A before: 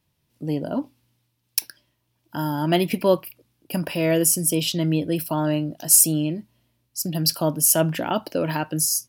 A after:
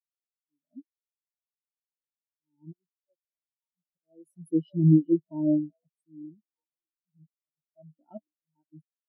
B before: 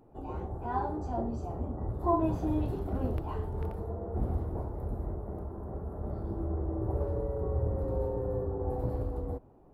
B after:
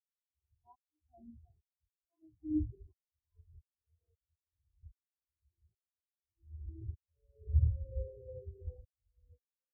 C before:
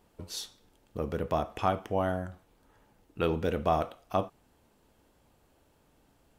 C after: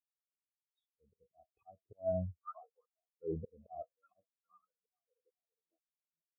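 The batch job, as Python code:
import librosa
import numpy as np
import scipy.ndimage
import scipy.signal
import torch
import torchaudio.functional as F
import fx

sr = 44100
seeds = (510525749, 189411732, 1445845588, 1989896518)

y = fx.echo_stepped(x, sr, ms=409, hz=2700.0, octaves=-0.7, feedback_pct=70, wet_db=-6.5)
y = fx.auto_swell(y, sr, attack_ms=586.0)
y = fx.spectral_expand(y, sr, expansion=4.0)
y = y * 10.0 ** (1.0 / 20.0)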